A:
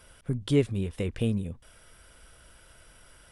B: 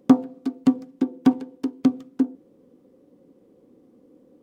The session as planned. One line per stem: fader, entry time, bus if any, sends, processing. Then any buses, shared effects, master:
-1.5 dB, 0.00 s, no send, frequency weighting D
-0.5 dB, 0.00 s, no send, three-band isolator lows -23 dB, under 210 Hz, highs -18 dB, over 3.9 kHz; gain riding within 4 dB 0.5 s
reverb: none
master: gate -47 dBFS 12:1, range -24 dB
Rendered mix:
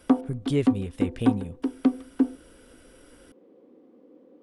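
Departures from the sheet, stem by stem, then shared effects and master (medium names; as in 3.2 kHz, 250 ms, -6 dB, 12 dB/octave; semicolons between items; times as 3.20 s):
stem A: missing frequency weighting D; master: missing gate -47 dBFS 12:1, range -24 dB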